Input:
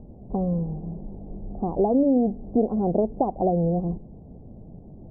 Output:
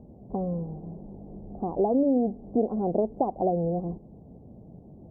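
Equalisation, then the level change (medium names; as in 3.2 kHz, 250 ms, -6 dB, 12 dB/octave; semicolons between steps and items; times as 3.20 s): high-pass 97 Hz 6 dB/octave; dynamic bell 160 Hz, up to -3 dB, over -37 dBFS, Q 1.5; -2.0 dB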